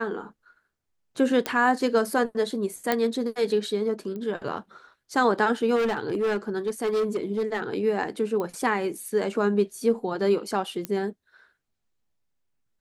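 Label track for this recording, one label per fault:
1.460000	1.460000	pop -11 dBFS
2.920000	2.920000	pop -9 dBFS
4.160000	4.160000	pop -25 dBFS
5.750000	7.620000	clipped -21 dBFS
8.400000	8.400000	pop -19 dBFS
10.850000	10.850000	pop -14 dBFS

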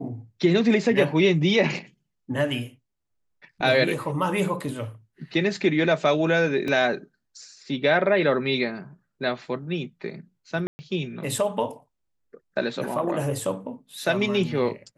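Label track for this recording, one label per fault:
6.680000	6.680000	dropout 2 ms
10.670000	10.790000	dropout 120 ms

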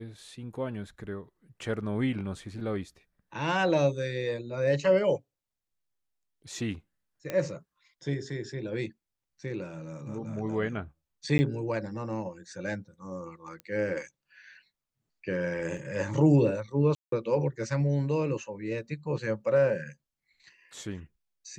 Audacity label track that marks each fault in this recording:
7.300000	7.300000	pop -18 dBFS
11.380000	11.390000	dropout 10 ms
13.600000	13.600000	pop -28 dBFS
15.770000	15.770000	dropout 2.3 ms
16.950000	17.120000	dropout 173 ms

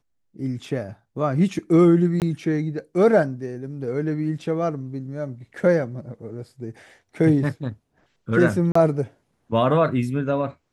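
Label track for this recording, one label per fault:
2.200000	2.220000	dropout 18 ms
8.720000	8.750000	dropout 34 ms

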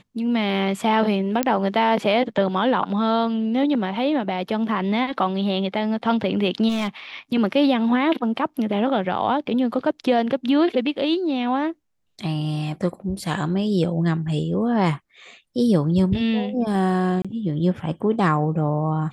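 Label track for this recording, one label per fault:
1.430000	1.430000	pop -5 dBFS
6.680000	6.880000	clipped -19 dBFS
17.220000	17.250000	dropout 26 ms

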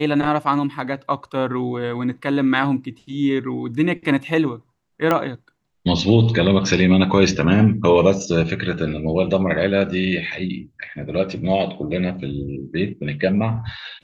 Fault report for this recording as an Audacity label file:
5.110000	5.110000	pop -7 dBFS

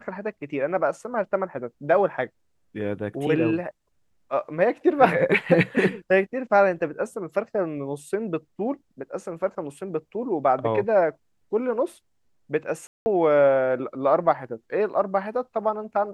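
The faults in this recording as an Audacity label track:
12.870000	13.060000	dropout 190 ms

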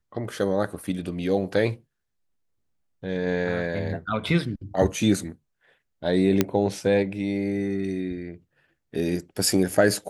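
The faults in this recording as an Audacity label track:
6.410000	6.410000	pop -5 dBFS

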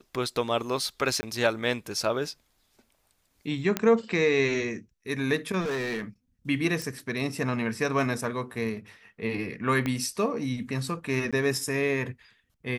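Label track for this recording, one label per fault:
1.210000	1.230000	dropout 20 ms
3.770000	3.770000	pop -10 dBFS
5.600000	6.040000	clipped -27 dBFS
6.820000	6.820000	pop
9.860000	9.860000	pop -16 dBFS
11.310000	11.330000	dropout 16 ms

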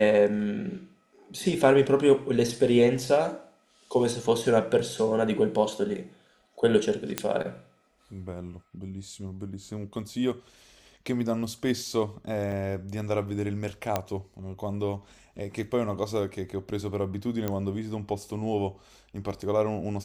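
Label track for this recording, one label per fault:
7.180000	7.180000	pop -9 dBFS
12.520000	12.520000	dropout 3.3 ms
13.960000	13.960000	pop -11 dBFS
17.480000	17.480000	pop -15 dBFS

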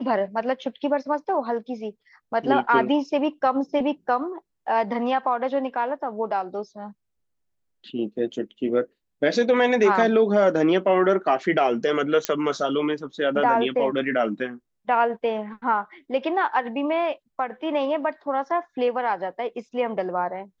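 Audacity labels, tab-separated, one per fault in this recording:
12.250000	12.250000	pop -7 dBFS

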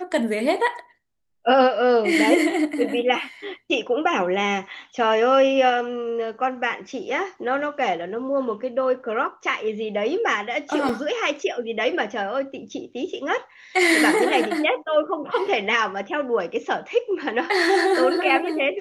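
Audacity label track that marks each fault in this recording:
10.890000	10.890000	dropout 3.6 ms

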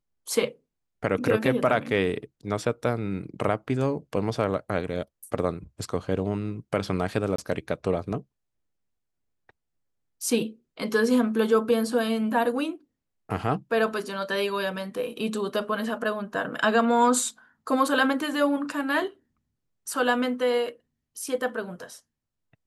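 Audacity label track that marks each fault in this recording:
7.360000	7.380000	dropout 24 ms

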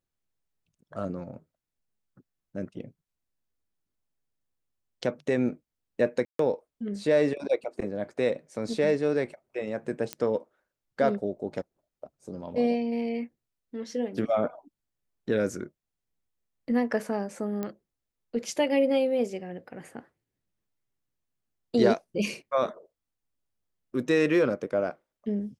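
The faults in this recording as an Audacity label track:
6.250000	6.390000	dropout 143 ms
10.130000	10.130000	pop -15 dBFS
17.630000	17.630000	pop -19 dBFS

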